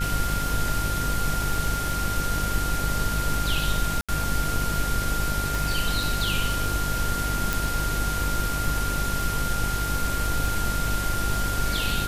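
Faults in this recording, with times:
buzz 50 Hz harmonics 18 -30 dBFS
crackle 43 per s -30 dBFS
whine 1.4 kHz -29 dBFS
4.01–4.09 s: dropout 76 ms
5.55 s: pop
7.53 s: pop

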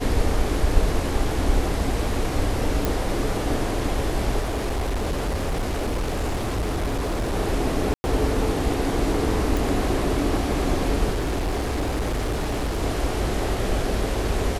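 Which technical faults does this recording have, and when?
2.85 s: pop
4.41–7.35 s: clipped -21 dBFS
7.94–8.04 s: dropout 100 ms
9.57 s: pop
11.10–12.83 s: clipped -21 dBFS

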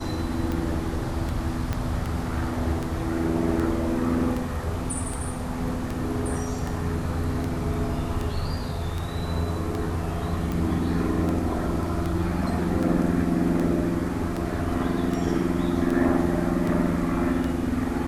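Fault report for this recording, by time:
tick 78 rpm
1.73 s: pop -14 dBFS

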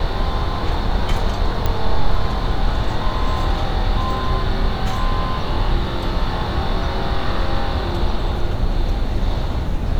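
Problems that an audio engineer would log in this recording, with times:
1.66 s: pop -7 dBFS

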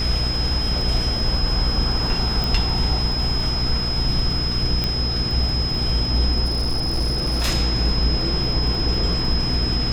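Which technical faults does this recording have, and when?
crackle 16 per s -28 dBFS
hum 60 Hz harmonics 8 -26 dBFS
whine 5.1 kHz -24 dBFS
2.44 s: pop
4.84 s: pop -9 dBFS
6.44–7.49 s: clipped -17 dBFS

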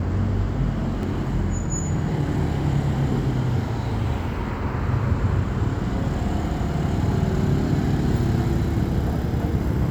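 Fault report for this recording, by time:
1.03 s: dropout 2.1 ms

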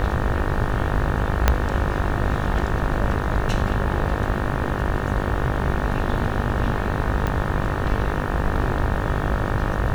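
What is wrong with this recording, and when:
buzz 50 Hz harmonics 37 -27 dBFS
1.48 s: pop -1 dBFS
7.27 s: pop -12 dBFS

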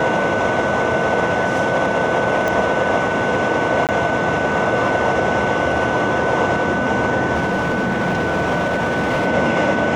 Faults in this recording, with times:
whine 1.5 kHz -23 dBFS
2.48 s: pop
3.87–3.89 s: dropout 18 ms
7.34–9.28 s: clipped -14.5 dBFS

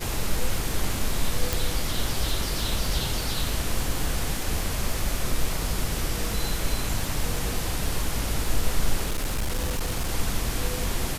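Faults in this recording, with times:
crackle 51 per s -31 dBFS
1.53 s: pop
9.05–10.10 s: clipped -22 dBFS

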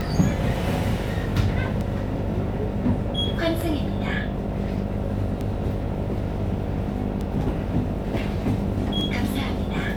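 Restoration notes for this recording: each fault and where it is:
buzz 50 Hz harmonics 15 -30 dBFS
tick

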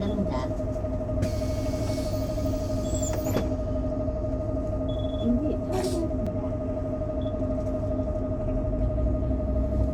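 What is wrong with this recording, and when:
6.26–6.27 s: dropout 5.4 ms

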